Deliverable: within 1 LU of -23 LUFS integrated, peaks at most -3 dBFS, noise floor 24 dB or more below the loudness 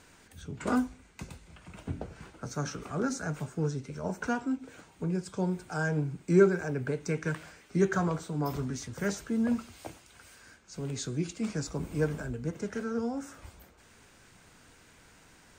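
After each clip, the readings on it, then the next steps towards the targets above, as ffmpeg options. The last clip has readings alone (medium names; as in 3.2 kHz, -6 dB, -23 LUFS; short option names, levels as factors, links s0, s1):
loudness -32.0 LUFS; peak level -10.0 dBFS; loudness target -23.0 LUFS
-> -af "volume=2.82,alimiter=limit=0.708:level=0:latency=1"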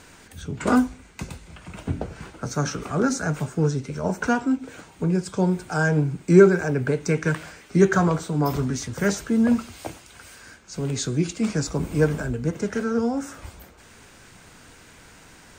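loudness -23.5 LUFS; peak level -3.0 dBFS; noise floor -50 dBFS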